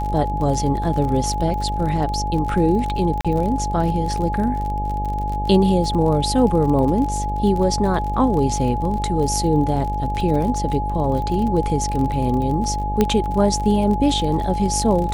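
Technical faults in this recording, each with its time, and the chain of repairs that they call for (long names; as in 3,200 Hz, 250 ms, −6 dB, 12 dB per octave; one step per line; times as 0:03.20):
mains buzz 50 Hz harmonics 15 −25 dBFS
surface crackle 41 per second −26 dBFS
whistle 840 Hz −24 dBFS
0:03.21–0:03.25: drop-out 36 ms
0:13.01: click −4 dBFS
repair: click removal
hum removal 50 Hz, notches 15
notch filter 840 Hz, Q 30
repair the gap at 0:03.21, 36 ms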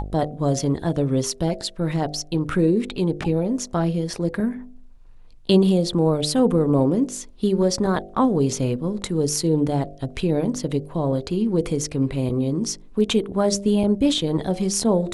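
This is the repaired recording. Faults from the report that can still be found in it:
0:13.01: click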